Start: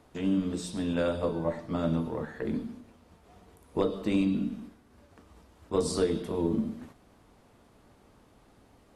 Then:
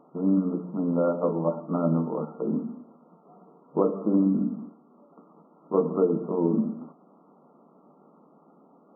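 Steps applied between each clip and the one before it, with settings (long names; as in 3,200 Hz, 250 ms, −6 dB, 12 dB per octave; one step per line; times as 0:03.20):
brick-wall band-pass 140–1,400 Hz
level +4.5 dB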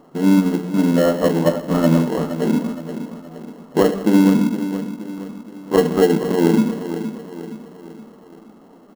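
in parallel at −7.5 dB: sample-rate reduction 1,200 Hz, jitter 0%
on the sum: repeating echo 470 ms, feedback 47%, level −11 dB
level +6.5 dB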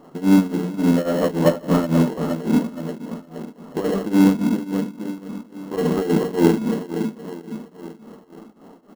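in parallel at −4 dB: gain into a clipping stage and back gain 18.5 dB
on the sum: shaped tremolo triangle 3.6 Hz, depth 90%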